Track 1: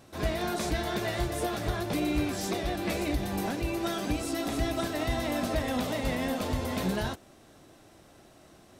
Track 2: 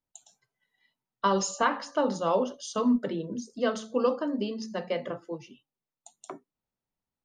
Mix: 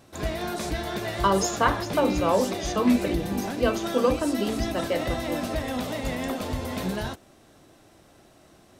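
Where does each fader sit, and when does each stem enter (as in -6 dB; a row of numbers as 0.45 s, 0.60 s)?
+0.5 dB, +3.0 dB; 0.00 s, 0.00 s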